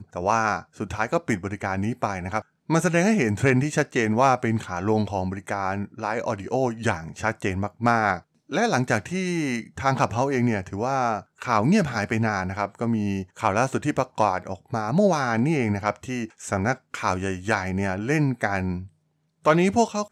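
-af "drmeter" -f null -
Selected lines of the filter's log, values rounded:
Channel 1: DR: 12.6
Overall DR: 12.6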